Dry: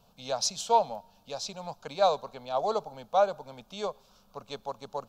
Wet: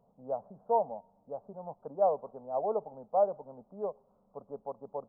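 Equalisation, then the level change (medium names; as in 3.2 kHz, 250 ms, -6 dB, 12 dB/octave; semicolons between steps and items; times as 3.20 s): Gaussian low-pass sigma 12 samples; bass shelf 84 Hz -9 dB; bass shelf 230 Hz -11 dB; +4.5 dB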